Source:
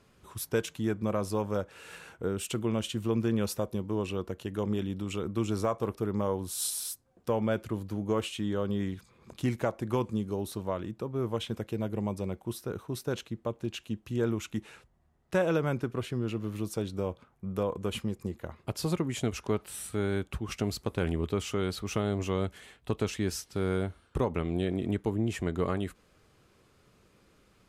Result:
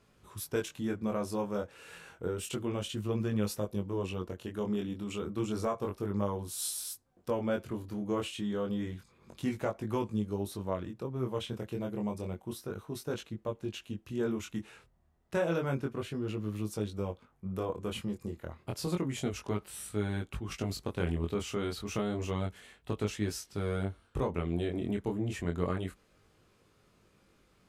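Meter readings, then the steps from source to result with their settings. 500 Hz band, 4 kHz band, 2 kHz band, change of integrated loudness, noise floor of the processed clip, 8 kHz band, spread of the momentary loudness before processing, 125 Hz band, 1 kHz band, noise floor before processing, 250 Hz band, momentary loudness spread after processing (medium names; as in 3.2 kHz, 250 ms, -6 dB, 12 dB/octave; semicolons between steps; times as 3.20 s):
-3.0 dB, -3.0 dB, -3.0 dB, -3.0 dB, -67 dBFS, -3.0 dB, 7 LU, -3.0 dB, -3.0 dB, -65 dBFS, -2.5 dB, 7 LU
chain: chorus 0.3 Hz, delay 19 ms, depth 5.5 ms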